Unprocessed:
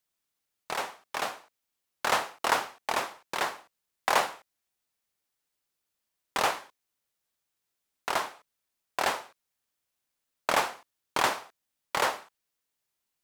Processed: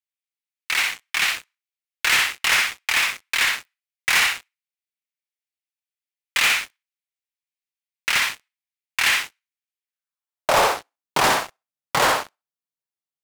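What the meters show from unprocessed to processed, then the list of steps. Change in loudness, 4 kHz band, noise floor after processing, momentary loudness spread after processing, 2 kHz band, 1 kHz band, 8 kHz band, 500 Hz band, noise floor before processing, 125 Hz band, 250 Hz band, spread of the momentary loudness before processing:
+10.0 dB, +13.0 dB, below −85 dBFS, 12 LU, +13.0 dB, +4.5 dB, +12.0 dB, +5.5 dB, −84 dBFS, +10.5 dB, +6.0 dB, 12 LU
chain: feedback echo with a high-pass in the loop 63 ms, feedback 21%, high-pass 350 Hz, level −5 dB
high-pass filter sweep 2,200 Hz → 130 Hz, 0:09.81–0:11.27
leveller curve on the samples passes 5
level −5.5 dB

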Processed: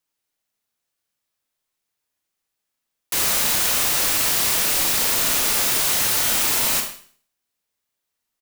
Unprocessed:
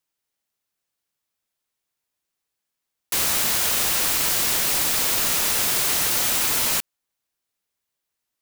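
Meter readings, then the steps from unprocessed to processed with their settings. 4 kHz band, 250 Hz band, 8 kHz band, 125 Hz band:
+1.5 dB, +1.5 dB, +1.5 dB, +1.0 dB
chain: slap from a distant wall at 21 metres, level −20 dB
four-comb reverb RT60 0.48 s, combs from 26 ms, DRR 3.5 dB

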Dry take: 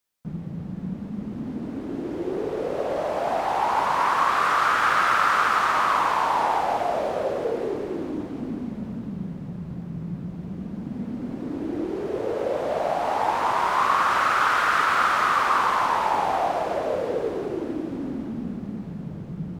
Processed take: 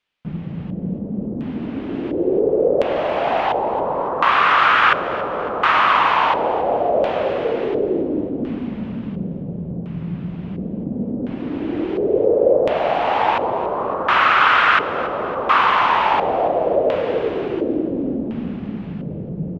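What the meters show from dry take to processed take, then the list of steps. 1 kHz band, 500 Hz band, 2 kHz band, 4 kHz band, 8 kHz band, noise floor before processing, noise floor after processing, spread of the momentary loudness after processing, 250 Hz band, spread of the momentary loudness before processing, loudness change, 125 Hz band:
+3.5 dB, +8.5 dB, +5.5 dB, +7.0 dB, below −10 dB, −36 dBFS, −30 dBFS, 14 LU, +6.5 dB, 14 LU, +5.0 dB, +5.5 dB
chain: auto-filter low-pass square 0.71 Hz 520–2,900 Hz
repeating echo 279 ms, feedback 49%, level −16 dB
level +5 dB

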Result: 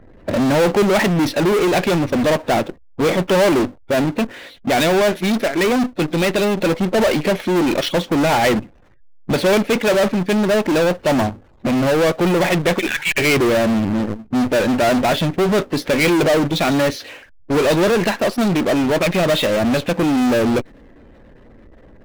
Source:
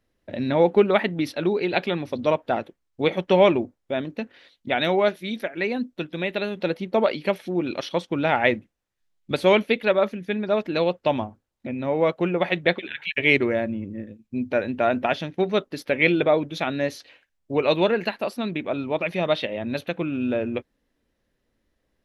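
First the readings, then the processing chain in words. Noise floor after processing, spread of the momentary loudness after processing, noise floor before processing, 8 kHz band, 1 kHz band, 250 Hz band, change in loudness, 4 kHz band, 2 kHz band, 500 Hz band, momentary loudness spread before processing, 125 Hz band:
−46 dBFS, 6 LU, −76 dBFS, can't be measured, +6.5 dB, +9.0 dB, +6.5 dB, +8.0 dB, +5.5 dB, +5.5 dB, 11 LU, +9.5 dB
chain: gate on every frequency bin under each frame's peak −25 dB strong
high-shelf EQ 4,300 Hz −11 dB
in parallel at −6 dB: fuzz pedal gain 42 dB, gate −39 dBFS
on the sum: power curve on the samples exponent 0.5
one half of a high-frequency compander decoder only
level −5 dB

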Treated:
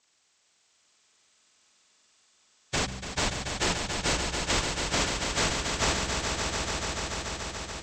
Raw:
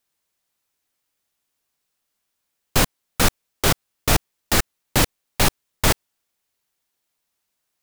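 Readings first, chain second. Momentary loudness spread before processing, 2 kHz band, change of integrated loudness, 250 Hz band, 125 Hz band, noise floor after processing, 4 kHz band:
3 LU, −3.5 dB, −7.0 dB, −6.5 dB, −8.0 dB, −69 dBFS, −3.0 dB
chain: partials spread apart or drawn together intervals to 78%
hum removal 64.25 Hz, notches 3
downward compressor 4 to 1, threshold −30 dBFS, peak gain reduction 13.5 dB
brickwall limiter −24.5 dBFS, peak gain reduction 8 dB
harmonic generator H 2 −25 dB, 5 −34 dB, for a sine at −24.5 dBFS
on a send: echo that builds up and dies away 144 ms, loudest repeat 5, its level −7.5 dB
on the sum: level +7 dB

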